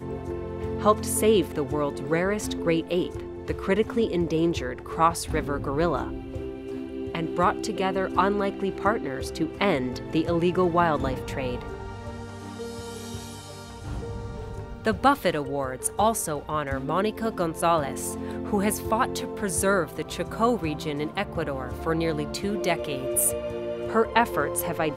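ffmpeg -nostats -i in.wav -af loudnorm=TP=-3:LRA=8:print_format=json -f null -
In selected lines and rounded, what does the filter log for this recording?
"input_i" : "-26.3",
"input_tp" : "-4.6",
"input_lra" : "3.1",
"input_thresh" : "-36.6",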